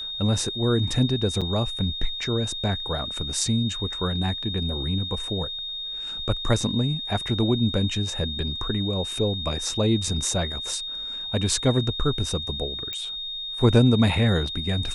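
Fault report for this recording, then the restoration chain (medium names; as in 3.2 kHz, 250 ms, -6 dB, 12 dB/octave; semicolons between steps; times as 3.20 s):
whine 3.7 kHz -30 dBFS
1.41–1.42 s: dropout 6.3 ms
12.93 s: pop -17 dBFS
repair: de-click; band-stop 3.7 kHz, Q 30; interpolate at 1.41 s, 6.3 ms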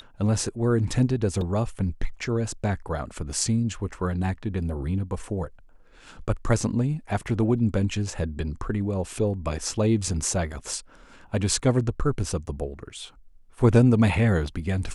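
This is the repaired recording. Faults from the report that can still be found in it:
12.93 s: pop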